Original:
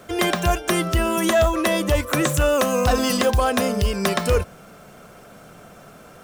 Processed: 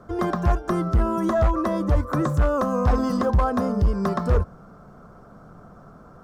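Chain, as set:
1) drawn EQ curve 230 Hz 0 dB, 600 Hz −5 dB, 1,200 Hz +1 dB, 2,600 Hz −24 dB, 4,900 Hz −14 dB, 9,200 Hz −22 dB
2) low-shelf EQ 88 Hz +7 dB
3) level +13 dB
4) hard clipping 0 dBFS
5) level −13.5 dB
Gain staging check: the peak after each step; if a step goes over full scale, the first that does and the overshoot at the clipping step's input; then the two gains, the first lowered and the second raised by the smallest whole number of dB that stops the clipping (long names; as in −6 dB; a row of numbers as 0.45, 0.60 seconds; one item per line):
−10.5, −7.0, +6.0, 0.0, −13.5 dBFS
step 3, 6.0 dB
step 3 +7 dB, step 5 −7.5 dB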